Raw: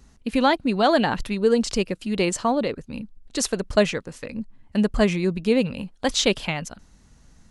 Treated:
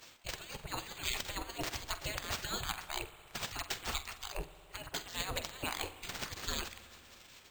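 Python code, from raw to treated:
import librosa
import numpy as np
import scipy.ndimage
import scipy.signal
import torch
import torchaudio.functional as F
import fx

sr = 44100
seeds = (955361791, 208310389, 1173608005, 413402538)

y = scipy.signal.medfilt(x, 3)
y = scipy.signal.sosfilt(scipy.signal.butter(2, 46.0, 'highpass', fs=sr, output='sos'), y)
y = fx.spec_gate(y, sr, threshold_db=-30, keep='weak')
y = fx.low_shelf(y, sr, hz=310.0, db=10.5)
y = fx.over_compress(y, sr, threshold_db=-48.0, ratio=-0.5)
y = fx.room_flutter(y, sr, wall_m=7.9, rt60_s=0.21)
y = fx.rev_spring(y, sr, rt60_s=2.7, pass_ms=(59,), chirp_ms=75, drr_db=12.5)
y = np.repeat(y[::4], 4)[:len(y)]
y = y * 10.0 ** (9.0 / 20.0)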